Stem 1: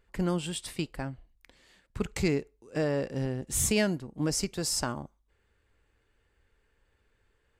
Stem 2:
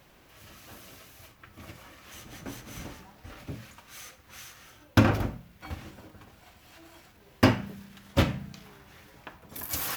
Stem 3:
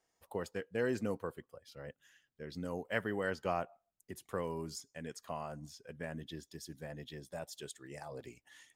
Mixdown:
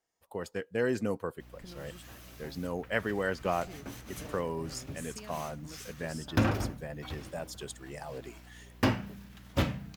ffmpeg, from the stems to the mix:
-filter_complex "[0:a]acompressor=threshold=-32dB:ratio=6,adelay=1450,volume=-13dB[a];[1:a]aeval=exprs='val(0)+0.00355*(sin(2*PI*60*n/s)+sin(2*PI*2*60*n/s)/2+sin(2*PI*3*60*n/s)/3+sin(2*PI*4*60*n/s)/4+sin(2*PI*5*60*n/s)/5)':c=same,asoftclip=type=tanh:threshold=-13dB,adelay=1400,volume=-3.5dB[b];[2:a]dynaudnorm=f=250:g=3:m=9dB,volume=-4.5dB,asplit=2[c][d];[d]apad=whole_len=398696[e];[a][e]sidechaingate=range=-33dB:threshold=-54dB:ratio=16:detection=peak[f];[f][b][c]amix=inputs=3:normalize=0"

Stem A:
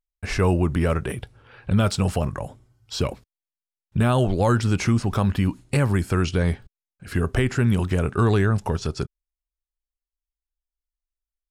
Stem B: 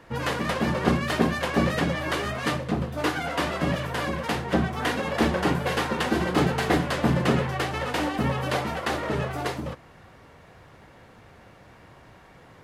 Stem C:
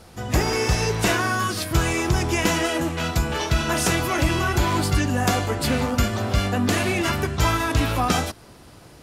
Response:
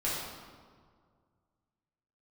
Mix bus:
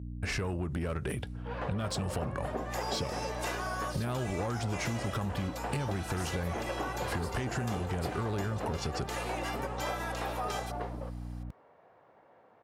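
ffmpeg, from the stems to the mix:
-filter_complex "[0:a]acompressor=threshold=-22dB:ratio=6,aeval=exprs='val(0)+0.0126*(sin(2*PI*60*n/s)+sin(2*PI*2*60*n/s)/2+sin(2*PI*3*60*n/s)/3+sin(2*PI*4*60*n/s)/4+sin(2*PI*5*60*n/s)/5)':c=same,asoftclip=type=tanh:threshold=-21dB,volume=0.5dB[a];[1:a]bandpass=f=680:t=q:w=1.3:csg=0,adelay=1350,volume=-5dB[b];[2:a]highpass=520,equalizer=f=890:w=4.7:g=7.5,aecho=1:1:2.5:0.54,adelay=2400,volume=-14dB[c];[a][b][c]amix=inputs=3:normalize=0,highpass=47,acompressor=threshold=-30dB:ratio=6"

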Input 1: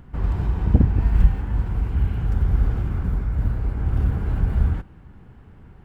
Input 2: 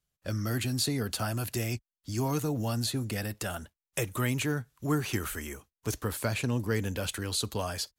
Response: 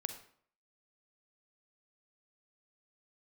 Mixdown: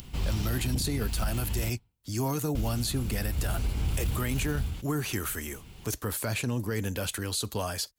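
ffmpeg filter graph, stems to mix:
-filter_complex "[0:a]aexciter=amount=11.2:drive=5.3:freq=2.5k,tremolo=f=0.53:d=0.61,volume=-5.5dB,asplit=3[a][b][c];[a]atrim=end=1.7,asetpts=PTS-STARTPTS,afade=t=out:st=1.696:d=0.004:c=hsin[d];[b]atrim=start=1.7:end=2.55,asetpts=PTS-STARTPTS,volume=0[e];[c]atrim=start=2.55,asetpts=PTS-STARTPTS,afade=t=in:d=0.004:c=hsin[f];[d][e][f]concat=n=3:v=0:a=1,asplit=2[g][h];[h]volume=-16dB[i];[1:a]highshelf=f=8.5k:g=6,volume=1dB[j];[2:a]atrim=start_sample=2205[k];[i][k]afir=irnorm=-1:irlink=0[l];[g][j][l]amix=inputs=3:normalize=0,acompressor=mode=upward:threshold=-40dB:ratio=2.5,alimiter=limit=-20.5dB:level=0:latency=1:release=20"

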